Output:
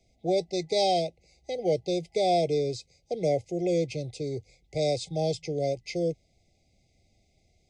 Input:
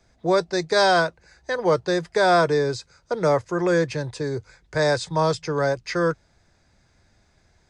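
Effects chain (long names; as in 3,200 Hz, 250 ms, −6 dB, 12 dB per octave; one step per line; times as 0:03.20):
brick-wall band-stop 810–2,000 Hz
level −5.5 dB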